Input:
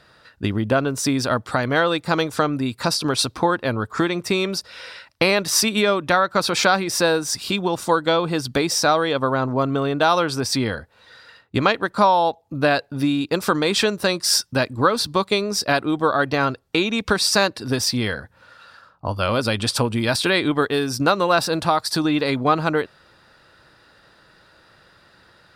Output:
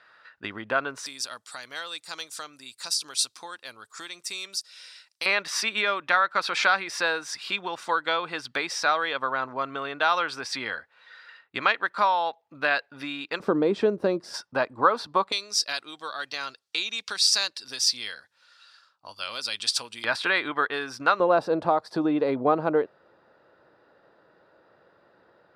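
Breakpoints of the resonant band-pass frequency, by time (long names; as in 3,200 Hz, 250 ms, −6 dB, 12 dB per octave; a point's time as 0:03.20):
resonant band-pass, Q 1.1
1,600 Hz
from 0:01.06 7,600 Hz
from 0:05.26 1,900 Hz
from 0:13.40 380 Hz
from 0:14.34 960 Hz
from 0:15.32 5,200 Hz
from 0:20.04 1,500 Hz
from 0:21.20 510 Hz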